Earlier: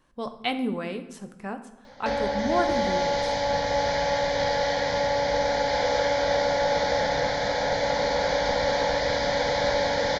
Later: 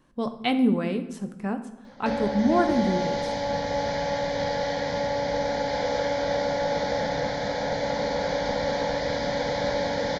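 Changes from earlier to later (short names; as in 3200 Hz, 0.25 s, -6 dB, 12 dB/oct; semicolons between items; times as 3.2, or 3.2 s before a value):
background -4.5 dB; master: add bell 210 Hz +8 dB 2 oct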